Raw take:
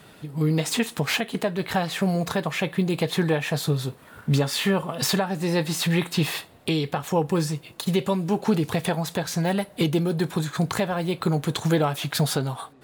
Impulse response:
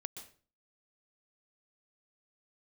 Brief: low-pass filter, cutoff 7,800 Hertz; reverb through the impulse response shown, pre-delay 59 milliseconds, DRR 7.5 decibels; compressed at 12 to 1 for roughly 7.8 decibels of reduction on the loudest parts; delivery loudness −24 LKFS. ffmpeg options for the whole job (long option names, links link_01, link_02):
-filter_complex "[0:a]lowpass=7800,acompressor=threshold=-25dB:ratio=12,asplit=2[link_01][link_02];[1:a]atrim=start_sample=2205,adelay=59[link_03];[link_02][link_03]afir=irnorm=-1:irlink=0,volume=-4.5dB[link_04];[link_01][link_04]amix=inputs=2:normalize=0,volume=5.5dB"